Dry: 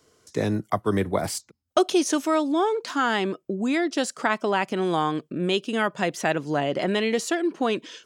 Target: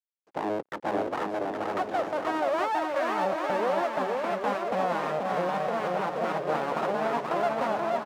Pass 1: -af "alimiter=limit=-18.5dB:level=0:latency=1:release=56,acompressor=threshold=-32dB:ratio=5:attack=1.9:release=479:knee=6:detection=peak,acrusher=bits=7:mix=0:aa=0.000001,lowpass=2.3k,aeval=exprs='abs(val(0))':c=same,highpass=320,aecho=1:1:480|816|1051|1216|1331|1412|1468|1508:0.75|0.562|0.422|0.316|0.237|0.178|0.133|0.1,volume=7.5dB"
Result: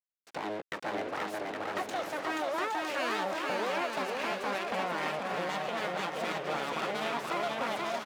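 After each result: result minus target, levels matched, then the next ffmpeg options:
compressor: peak gain reduction +7.5 dB; 2000 Hz band +5.0 dB
-af "alimiter=limit=-18.5dB:level=0:latency=1:release=56,acompressor=threshold=-21.5dB:ratio=5:attack=1.9:release=479:knee=6:detection=peak,acrusher=bits=7:mix=0:aa=0.000001,lowpass=2.3k,aeval=exprs='abs(val(0))':c=same,highpass=320,aecho=1:1:480|816|1051|1216|1331|1412|1468|1508:0.75|0.562|0.422|0.316|0.237|0.178|0.133|0.1,volume=7.5dB"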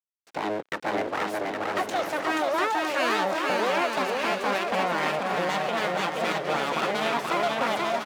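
2000 Hz band +5.0 dB
-af "alimiter=limit=-18.5dB:level=0:latency=1:release=56,acompressor=threshold=-21.5dB:ratio=5:attack=1.9:release=479:knee=6:detection=peak,acrusher=bits=7:mix=0:aa=0.000001,lowpass=620,aeval=exprs='abs(val(0))':c=same,highpass=320,aecho=1:1:480|816|1051|1216|1331|1412|1468|1508:0.75|0.562|0.422|0.316|0.237|0.178|0.133|0.1,volume=7.5dB"

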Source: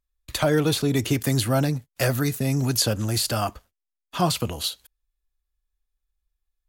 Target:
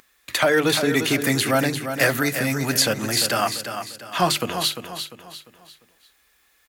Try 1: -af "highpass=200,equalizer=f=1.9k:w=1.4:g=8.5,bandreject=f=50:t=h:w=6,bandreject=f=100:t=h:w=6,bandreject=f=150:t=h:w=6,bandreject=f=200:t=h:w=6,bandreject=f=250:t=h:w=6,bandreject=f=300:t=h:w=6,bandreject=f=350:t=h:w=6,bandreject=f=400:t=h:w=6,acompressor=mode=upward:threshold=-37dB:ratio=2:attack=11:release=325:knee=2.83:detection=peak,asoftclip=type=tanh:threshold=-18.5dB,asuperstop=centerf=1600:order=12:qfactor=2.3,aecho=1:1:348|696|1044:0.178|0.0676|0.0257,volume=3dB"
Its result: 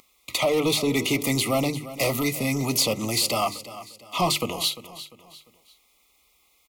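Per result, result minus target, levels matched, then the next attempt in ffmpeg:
soft clip: distortion +14 dB; 2000 Hz band -5.0 dB; echo-to-direct -6.5 dB
-af "highpass=200,equalizer=f=1.9k:w=1.4:g=8.5,bandreject=f=50:t=h:w=6,bandreject=f=100:t=h:w=6,bandreject=f=150:t=h:w=6,bandreject=f=200:t=h:w=6,bandreject=f=250:t=h:w=6,bandreject=f=300:t=h:w=6,bandreject=f=350:t=h:w=6,bandreject=f=400:t=h:w=6,acompressor=mode=upward:threshold=-37dB:ratio=2:attack=11:release=325:knee=2.83:detection=peak,asoftclip=type=tanh:threshold=-8dB,aecho=1:1:348|696|1044:0.178|0.0676|0.0257,volume=3dB"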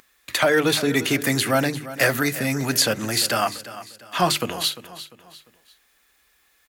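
echo-to-direct -6.5 dB
-af "highpass=200,equalizer=f=1.9k:w=1.4:g=8.5,bandreject=f=50:t=h:w=6,bandreject=f=100:t=h:w=6,bandreject=f=150:t=h:w=6,bandreject=f=200:t=h:w=6,bandreject=f=250:t=h:w=6,bandreject=f=300:t=h:w=6,bandreject=f=350:t=h:w=6,bandreject=f=400:t=h:w=6,acompressor=mode=upward:threshold=-37dB:ratio=2:attack=11:release=325:knee=2.83:detection=peak,asoftclip=type=tanh:threshold=-8dB,aecho=1:1:348|696|1044|1392:0.376|0.143|0.0543|0.0206,volume=3dB"

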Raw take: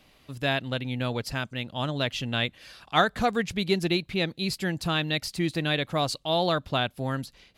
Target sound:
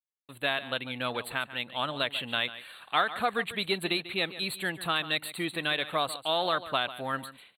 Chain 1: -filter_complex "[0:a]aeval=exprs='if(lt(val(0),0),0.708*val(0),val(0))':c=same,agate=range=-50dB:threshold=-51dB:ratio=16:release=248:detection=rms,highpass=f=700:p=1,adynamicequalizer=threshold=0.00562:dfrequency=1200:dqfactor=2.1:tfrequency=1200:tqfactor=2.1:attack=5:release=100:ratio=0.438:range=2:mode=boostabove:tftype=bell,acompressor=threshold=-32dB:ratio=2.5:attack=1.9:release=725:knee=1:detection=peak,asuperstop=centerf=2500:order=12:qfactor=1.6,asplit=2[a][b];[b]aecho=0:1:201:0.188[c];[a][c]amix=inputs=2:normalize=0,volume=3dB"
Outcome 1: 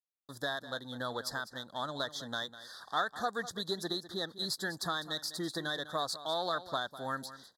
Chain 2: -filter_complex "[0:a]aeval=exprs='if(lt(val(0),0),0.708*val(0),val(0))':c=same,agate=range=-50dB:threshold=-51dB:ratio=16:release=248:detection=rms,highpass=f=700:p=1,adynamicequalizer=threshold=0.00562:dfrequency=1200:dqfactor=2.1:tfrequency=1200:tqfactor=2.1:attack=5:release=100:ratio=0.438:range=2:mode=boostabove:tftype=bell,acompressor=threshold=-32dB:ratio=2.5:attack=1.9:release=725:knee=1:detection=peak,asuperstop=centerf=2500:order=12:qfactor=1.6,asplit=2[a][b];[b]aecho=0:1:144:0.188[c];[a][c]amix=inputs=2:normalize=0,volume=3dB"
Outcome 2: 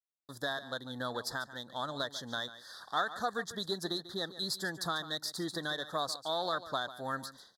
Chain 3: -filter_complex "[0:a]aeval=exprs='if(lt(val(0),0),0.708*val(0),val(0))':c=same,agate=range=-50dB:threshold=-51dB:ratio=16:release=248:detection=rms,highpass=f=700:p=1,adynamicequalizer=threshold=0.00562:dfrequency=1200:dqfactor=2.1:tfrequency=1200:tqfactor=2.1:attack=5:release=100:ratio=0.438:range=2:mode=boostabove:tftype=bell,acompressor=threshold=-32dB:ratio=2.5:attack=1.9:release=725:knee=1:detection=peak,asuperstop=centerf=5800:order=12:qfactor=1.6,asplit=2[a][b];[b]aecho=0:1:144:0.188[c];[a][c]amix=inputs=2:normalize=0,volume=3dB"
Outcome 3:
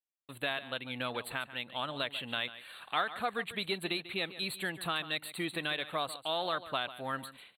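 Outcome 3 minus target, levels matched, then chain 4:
compressor: peak gain reduction +5.5 dB
-filter_complex "[0:a]aeval=exprs='if(lt(val(0),0),0.708*val(0),val(0))':c=same,agate=range=-50dB:threshold=-51dB:ratio=16:release=248:detection=rms,highpass=f=700:p=1,adynamicequalizer=threshold=0.00562:dfrequency=1200:dqfactor=2.1:tfrequency=1200:tqfactor=2.1:attack=5:release=100:ratio=0.438:range=2:mode=boostabove:tftype=bell,acompressor=threshold=-22.5dB:ratio=2.5:attack=1.9:release=725:knee=1:detection=peak,asuperstop=centerf=5800:order=12:qfactor=1.6,asplit=2[a][b];[b]aecho=0:1:144:0.188[c];[a][c]amix=inputs=2:normalize=0,volume=3dB"

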